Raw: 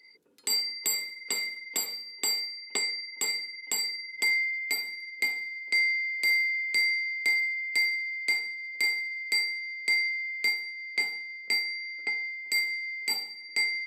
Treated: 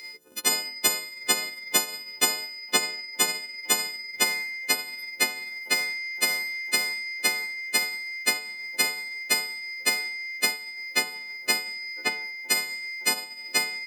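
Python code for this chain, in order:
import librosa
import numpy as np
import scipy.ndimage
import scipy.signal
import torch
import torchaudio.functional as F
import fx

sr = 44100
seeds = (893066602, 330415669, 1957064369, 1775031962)

y = fx.freq_snap(x, sr, grid_st=3)
y = fx.transient(y, sr, attack_db=7, sustain_db=-12)
y = fx.spectral_comp(y, sr, ratio=2.0)
y = y * librosa.db_to_amplitude(-1.0)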